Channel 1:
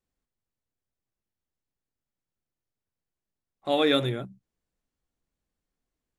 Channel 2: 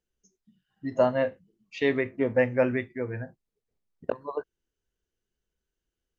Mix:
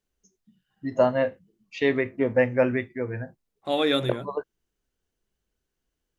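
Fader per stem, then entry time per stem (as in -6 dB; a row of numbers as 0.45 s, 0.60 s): -0.5 dB, +2.0 dB; 0.00 s, 0.00 s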